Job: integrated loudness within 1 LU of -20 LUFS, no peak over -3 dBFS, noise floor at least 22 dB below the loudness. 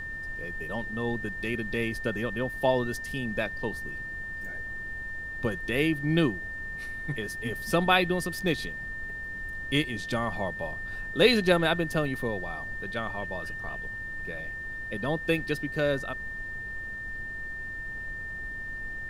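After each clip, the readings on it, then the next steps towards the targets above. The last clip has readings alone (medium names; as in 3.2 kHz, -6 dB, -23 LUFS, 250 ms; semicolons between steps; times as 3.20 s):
steady tone 1.8 kHz; tone level -35 dBFS; noise floor -37 dBFS; noise floor target -52 dBFS; loudness -30.0 LUFS; peak level -7.5 dBFS; loudness target -20.0 LUFS
-> band-stop 1.8 kHz, Q 30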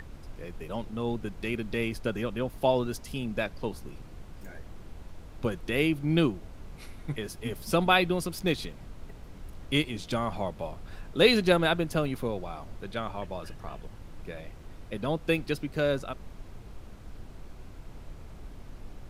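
steady tone not found; noise floor -47 dBFS; noise floor target -52 dBFS
-> noise print and reduce 6 dB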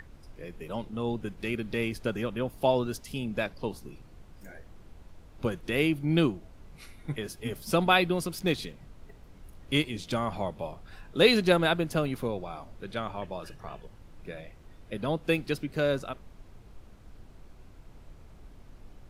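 noise floor -52 dBFS; loudness -29.5 LUFS; peak level -8.0 dBFS; loudness target -20.0 LUFS
-> trim +9.5 dB; peak limiter -3 dBFS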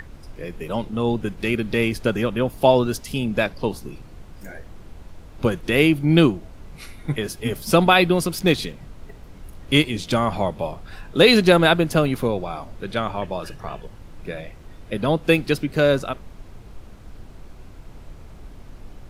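loudness -20.5 LUFS; peak level -3.0 dBFS; noise floor -43 dBFS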